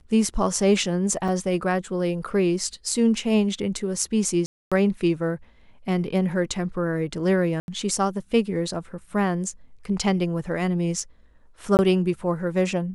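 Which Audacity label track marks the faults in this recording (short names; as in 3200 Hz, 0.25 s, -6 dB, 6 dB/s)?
1.280000	1.280000	gap 4.3 ms
4.460000	4.720000	gap 0.256 s
7.600000	7.680000	gap 81 ms
11.770000	11.790000	gap 19 ms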